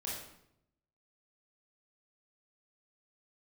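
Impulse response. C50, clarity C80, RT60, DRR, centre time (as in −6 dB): 1.0 dB, 5.0 dB, 0.75 s, −6.0 dB, 57 ms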